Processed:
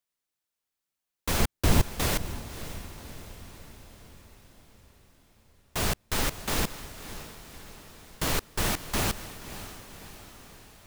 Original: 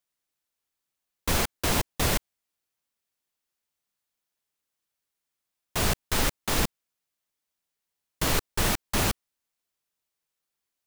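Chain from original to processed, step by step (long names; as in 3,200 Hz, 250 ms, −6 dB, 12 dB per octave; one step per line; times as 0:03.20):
0:01.40–0:01.87: low-shelf EQ 290 Hz +11.5 dB
feedback delay with all-pass diffusion 564 ms, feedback 57%, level −13 dB
level −2.5 dB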